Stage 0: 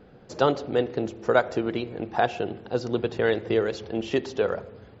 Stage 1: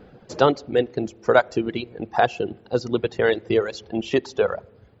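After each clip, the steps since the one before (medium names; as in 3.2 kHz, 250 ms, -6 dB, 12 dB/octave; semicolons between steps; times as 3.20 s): reverb removal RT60 2 s; trim +4.5 dB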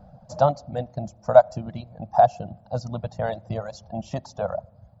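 FFT filter 180 Hz 0 dB, 410 Hz -29 dB, 620 Hz +4 dB, 2 kHz -21 dB, 3 kHz -21 dB, 5.4 kHz -7 dB; trim +3 dB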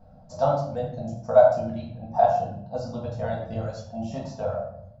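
simulated room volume 140 m³, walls mixed, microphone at 1.6 m; trim -8 dB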